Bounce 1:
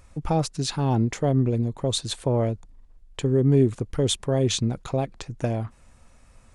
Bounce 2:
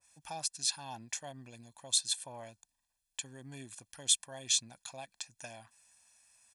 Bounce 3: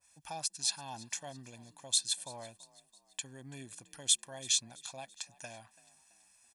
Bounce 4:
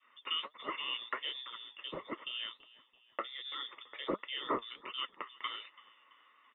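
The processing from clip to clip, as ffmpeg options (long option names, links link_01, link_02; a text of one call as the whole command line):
ffmpeg -i in.wav -af "aderivative,aecho=1:1:1.2:0.73,adynamicequalizer=threshold=0.00447:dfrequency=1600:dqfactor=0.7:tfrequency=1600:tqfactor=0.7:attack=5:release=100:ratio=0.375:range=1.5:mode=cutabove:tftype=highshelf" out.wav
ffmpeg -i in.wav -filter_complex "[0:a]asplit=4[link_01][link_02][link_03][link_04];[link_02]adelay=333,afreqshift=39,volume=-21dB[link_05];[link_03]adelay=666,afreqshift=78,volume=-27.4dB[link_06];[link_04]adelay=999,afreqshift=117,volume=-33.8dB[link_07];[link_01][link_05][link_06][link_07]amix=inputs=4:normalize=0" out.wav
ffmpeg -i in.wav -filter_complex "[0:a]lowpass=frequency=3100:width_type=q:width=0.5098,lowpass=frequency=3100:width_type=q:width=0.6013,lowpass=frequency=3100:width_type=q:width=0.9,lowpass=frequency=3100:width_type=q:width=2.563,afreqshift=-3700,flanger=delay=2.8:depth=6.4:regen=63:speed=1.4:shape=triangular,acrossover=split=300 2700:gain=0.0794 1 0.224[link_01][link_02][link_03];[link_01][link_02][link_03]amix=inputs=3:normalize=0,volume=15.5dB" out.wav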